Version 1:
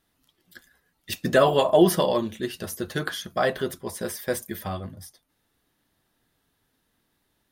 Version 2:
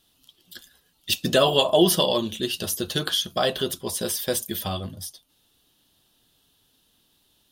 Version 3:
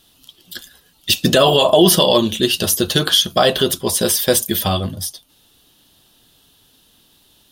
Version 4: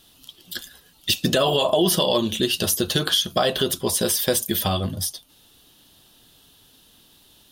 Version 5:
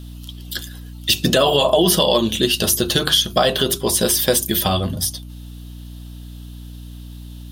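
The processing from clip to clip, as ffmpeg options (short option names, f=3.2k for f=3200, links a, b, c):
-filter_complex "[0:a]highshelf=f=2.5k:t=q:w=3:g=6,asplit=2[a][b];[b]acompressor=threshold=-27dB:ratio=6,volume=-1.5dB[c];[a][c]amix=inputs=2:normalize=0,volume=-2.5dB"
-af "alimiter=level_in=11.5dB:limit=-1dB:release=50:level=0:latency=1,volume=-1dB"
-af "acompressor=threshold=-22dB:ratio=2"
-af "bandreject=f=50:t=h:w=6,bandreject=f=100:t=h:w=6,bandreject=f=150:t=h:w=6,bandreject=f=200:t=h:w=6,bandreject=f=250:t=h:w=6,bandreject=f=300:t=h:w=6,bandreject=f=350:t=h:w=6,bandreject=f=400:t=h:w=6,aeval=exprs='val(0)+0.0126*(sin(2*PI*60*n/s)+sin(2*PI*2*60*n/s)/2+sin(2*PI*3*60*n/s)/3+sin(2*PI*4*60*n/s)/4+sin(2*PI*5*60*n/s)/5)':c=same,volume=4.5dB"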